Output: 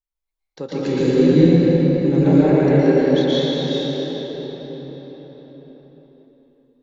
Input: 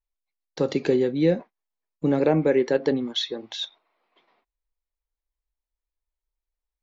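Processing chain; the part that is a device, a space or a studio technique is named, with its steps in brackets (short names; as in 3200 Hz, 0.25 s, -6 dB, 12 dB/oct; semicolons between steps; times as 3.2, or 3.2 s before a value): 0.81–2.27 tone controls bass +11 dB, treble +11 dB; cathedral (reverb RT60 5.2 s, pre-delay 0.111 s, DRR -11 dB); gain -6.5 dB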